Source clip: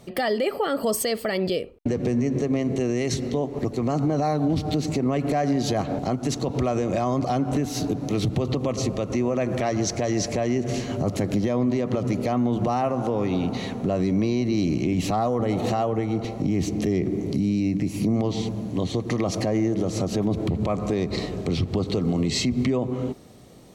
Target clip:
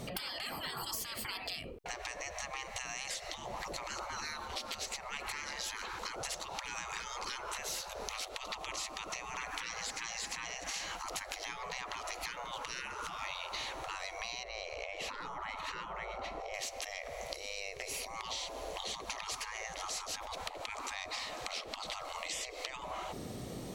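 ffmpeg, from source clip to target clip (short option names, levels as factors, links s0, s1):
-filter_complex "[0:a]asettb=1/sr,asplit=3[s0][s1][s2];[s0]atrim=end=14.434[s3];[s1]atrim=start=14.43:end=16.54,asetpts=PTS-STARTPTS,afade=t=in:d=0.004:c=qsin,afade=t=out:st=2.106:d=0.004:c=qsin,lowpass=f=1300:p=1[s4];[s2]atrim=start=16.536[s5];[s3][s4]acrossfade=d=0.004:c1=hsin:c2=qsin[s6];[s6][s5]acrossfade=d=0.004:c1=qsin:c2=hsin,afftfilt=real='re*lt(hypot(re,im),0.0501)':imag='im*lt(hypot(re,im),0.0501)':win_size=1024:overlap=0.75,acompressor=threshold=0.00708:ratio=6,volume=2"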